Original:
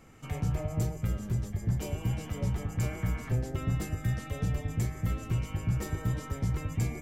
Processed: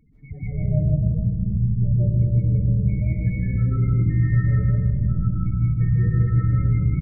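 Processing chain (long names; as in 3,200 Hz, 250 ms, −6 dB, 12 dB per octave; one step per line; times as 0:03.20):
parametric band 2,000 Hz +7 dB 0.36 octaves
spectral peaks only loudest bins 8
dynamic equaliser 680 Hz, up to −5 dB, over −53 dBFS, Q 0.91
single-tap delay 162 ms −4 dB
convolution reverb RT60 1.4 s, pre-delay 110 ms, DRR −8.5 dB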